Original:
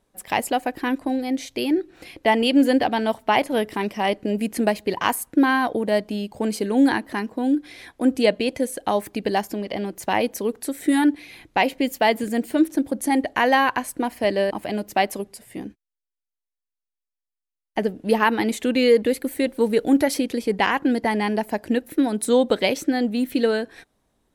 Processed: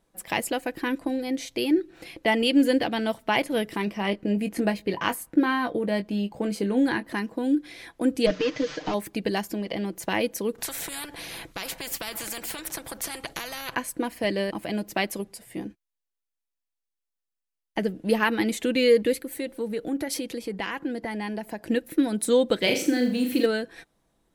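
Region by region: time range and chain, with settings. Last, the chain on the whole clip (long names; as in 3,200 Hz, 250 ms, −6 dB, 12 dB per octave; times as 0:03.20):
0:03.85–0:07.08: parametric band 9,800 Hz −7 dB 2.4 octaves + double-tracking delay 20 ms −9.5 dB
0:08.26–0:08.94: linear delta modulator 32 kbit/s, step −35 dBFS + low-shelf EQ 140 Hz −6.5 dB + comb filter 6.6 ms, depth 85%
0:10.58–0:13.75: parametric band 3,500 Hz −3 dB 2.5 octaves + downward compressor, threshold −20 dBFS + every bin compressed towards the loudest bin 4 to 1
0:19.22–0:21.64: downward compressor 2 to 1, threshold −29 dBFS + multiband upward and downward expander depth 40%
0:22.62–0:23.46: mu-law and A-law mismatch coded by mu + high-pass filter 65 Hz + flutter between parallel walls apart 6.9 metres, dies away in 0.44 s
whole clip: comb filter 6 ms, depth 31%; dynamic equaliser 790 Hz, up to −7 dB, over −34 dBFS, Q 1.4; level −1.5 dB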